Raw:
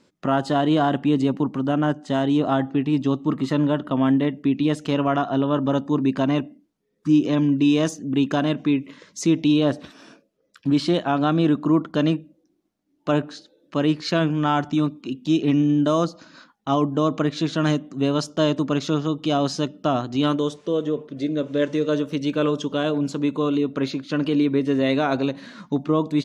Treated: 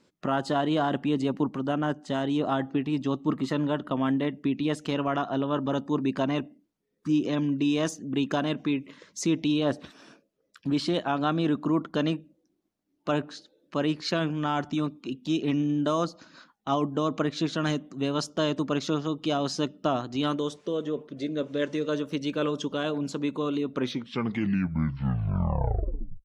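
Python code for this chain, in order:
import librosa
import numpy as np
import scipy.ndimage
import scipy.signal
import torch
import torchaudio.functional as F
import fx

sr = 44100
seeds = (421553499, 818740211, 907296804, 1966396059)

y = fx.tape_stop_end(x, sr, length_s=2.54)
y = fx.hpss(y, sr, part='harmonic', gain_db=-5)
y = y * librosa.db_to_amplitude(-2.5)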